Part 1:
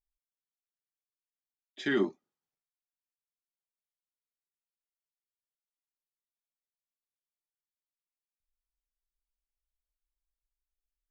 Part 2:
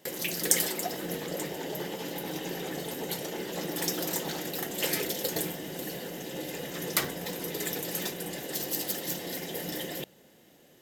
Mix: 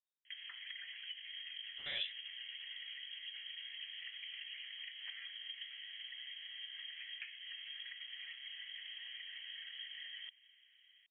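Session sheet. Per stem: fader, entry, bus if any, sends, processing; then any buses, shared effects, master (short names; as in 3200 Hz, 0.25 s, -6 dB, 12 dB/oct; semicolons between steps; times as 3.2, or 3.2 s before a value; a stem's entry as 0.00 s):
-11.5 dB, 0.00 s, no send, spectral limiter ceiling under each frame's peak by 18 dB
+1.5 dB, 0.25 s, no send, Chebyshev band-pass 430–1800 Hz, order 4; tilt shelf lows -7 dB, about 1200 Hz; compressor 5:1, threshold -45 dBFS, peak gain reduction 13.5 dB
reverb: off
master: high shelf 2300 Hz -11.5 dB; inverted band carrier 3700 Hz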